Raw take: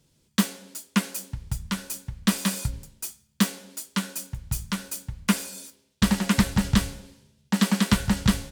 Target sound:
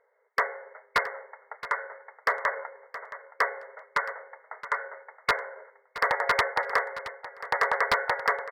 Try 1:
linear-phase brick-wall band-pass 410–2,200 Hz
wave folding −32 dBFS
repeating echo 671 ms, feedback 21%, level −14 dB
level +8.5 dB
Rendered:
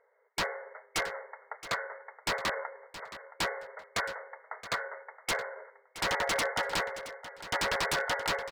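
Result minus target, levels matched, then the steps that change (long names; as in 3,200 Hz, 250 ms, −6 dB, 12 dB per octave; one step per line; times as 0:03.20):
wave folding: distortion +16 dB
change: wave folding −22.5 dBFS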